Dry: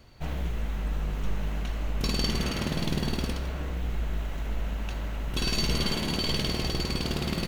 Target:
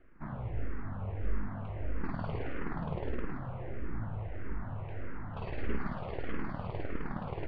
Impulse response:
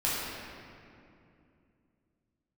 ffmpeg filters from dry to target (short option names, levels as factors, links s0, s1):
-filter_complex "[0:a]asplit=2[s0][s1];[s1]highpass=f=49:w=0.5412,highpass=f=49:w=1.3066[s2];[1:a]atrim=start_sample=2205,atrim=end_sample=6174,adelay=25[s3];[s2][s3]afir=irnorm=-1:irlink=0,volume=0.0891[s4];[s0][s4]amix=inputs=2:normalize=0,aeval=exprs='abs(val(0))':c=same,lowpass=f=1900:w=0.5412,lowpass=f=1900:w=1.3066,asplit=2[s5][s6];[s6]afreqshift=-1.6[s7];[s5][s7]amix=inputs=2:normalize=1,volume=0.891"